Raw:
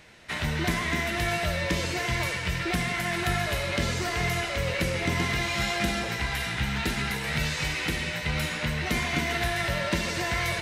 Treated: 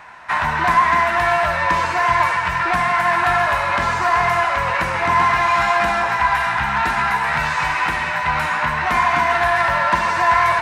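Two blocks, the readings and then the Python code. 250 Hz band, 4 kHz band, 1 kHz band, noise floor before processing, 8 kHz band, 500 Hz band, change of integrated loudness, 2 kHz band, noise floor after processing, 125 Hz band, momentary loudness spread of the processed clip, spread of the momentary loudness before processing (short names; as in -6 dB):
-1.0 dB, +1.0 dB, +19.0 dB, -33 dBFS, -1.0 dB, +8.5 dB, +10.5 dB, +10.5 dB, -22 dBFS, -1.0 dB, 4 LU, 2 LU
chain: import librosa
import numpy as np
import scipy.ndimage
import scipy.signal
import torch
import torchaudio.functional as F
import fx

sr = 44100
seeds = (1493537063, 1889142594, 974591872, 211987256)

y = fx.band_shelf(x, sr, hz=1100.0, db=15.0, octaves=1.7)
y = 10.0 ** (-11.0 / 20.0) * np.tanh(y / 10.0 ** (-11.0 / 20.0))
y = fx.graphic_eq_31(y, sr, hz=(1000, 2500, 12500), db=(10, 7, -6))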